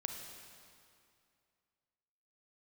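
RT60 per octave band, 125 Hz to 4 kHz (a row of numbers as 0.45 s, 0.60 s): 2.5 s, 2.5 s, 2.4 s, 2.4 s, 2.2 s, 2.1 s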